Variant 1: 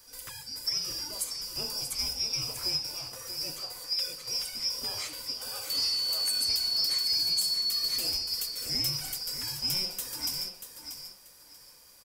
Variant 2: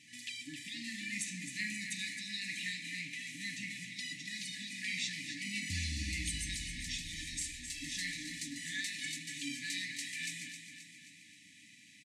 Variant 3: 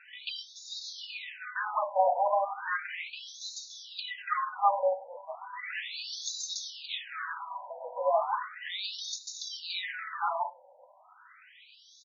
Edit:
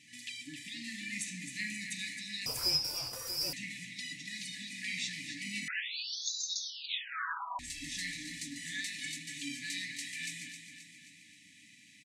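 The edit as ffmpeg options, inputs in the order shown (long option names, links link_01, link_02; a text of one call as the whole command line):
ffmpeg -i take0.wav -i take1.wav -i take2.wav -filter_complex "[1:a]asplit=3[link_01][link_02][link_03];[link_01]atrim=end=2.462[link_04];[0:a]atrim=start=2.458:end=3.532[link_05];[link_02]atrim=start=3.528:end=5.682[link_06];[2:a]atrim=start=5.678:end=7.592[link_07];[link_03]atrim=start=7.588[link_08];[link_04][link_05]acrossfade=duration=0.004:curve1=hsin:curve2=hsin[link_09];[link_09][link_06]acrossfade=duration=0.004:curve1=hsin:curve2=hsin[link_10];[link_10][link_07]acrossfade=duration=0.004:curve1=hsin:curve2=hsin[link_11];[link_11][link_08]acrossfade=duration=0.004:curve1=hsin:curve2=hsin" out.wav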